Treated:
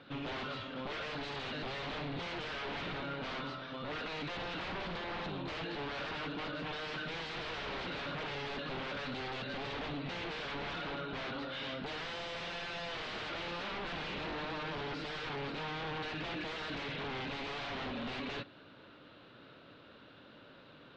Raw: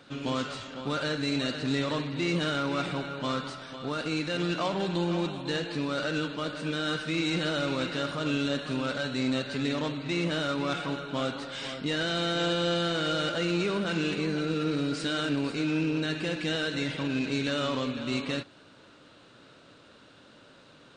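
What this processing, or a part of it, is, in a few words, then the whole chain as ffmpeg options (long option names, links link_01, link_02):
synthesiser wavefolder: -af "aeval=exprs='0.0224*(abs(mod(val(0)/0.0224+3,4)-2)-1)':channel_layout=same,lowpass=frequency=3900:width=0.5412,lowpass=frequency=3900:width=1.3066,volume=-1.5dB"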